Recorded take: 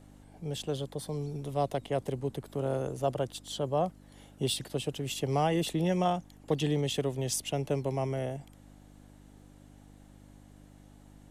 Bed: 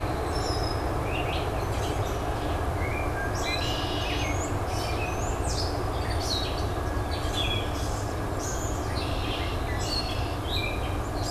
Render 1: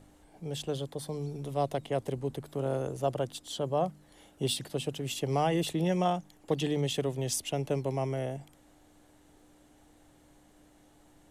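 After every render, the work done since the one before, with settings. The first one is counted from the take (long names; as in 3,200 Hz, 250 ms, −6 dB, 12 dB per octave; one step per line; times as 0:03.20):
hum removal 50 Hz, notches 5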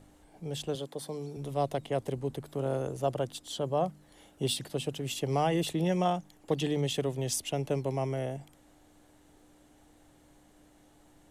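0:00.75–0:01.37: high-pass filter 190 Hz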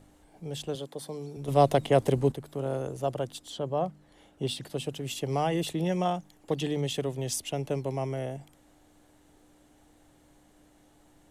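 0:01.48–0:02.32: clip gain +9 dB
0:03.50–0:04.63: low-pass filter 4,000 Hz 6 dB per octave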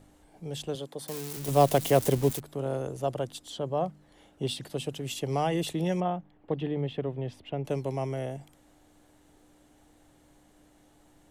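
0:01.08–0:02.40: spike at every zero crossing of −25 dBFS
0:06.00–0:07.65: high-frequency loss of the air 470 metres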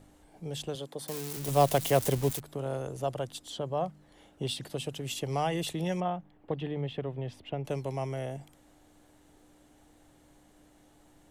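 dynamic equaliser 300 Hz, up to −5 dB, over −36 dBFS, Q 0.72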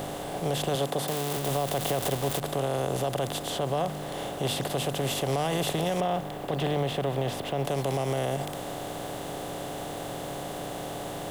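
compressor on every frequency bin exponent 0.4
brickwall limiter −18 dBFS, peak gain reduction 9.5 dB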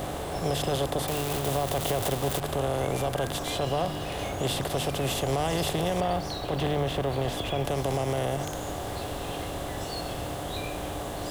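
mix in bed −9 dB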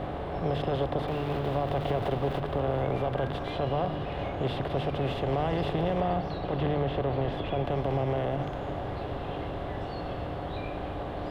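high-frequency loss of the air 390 metres
delay that swaps between a low-pass and a high-pass 111 ms, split 900 Hz, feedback 90%, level −14 dB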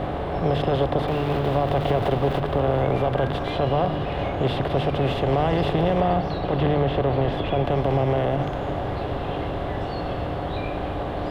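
level +7 dB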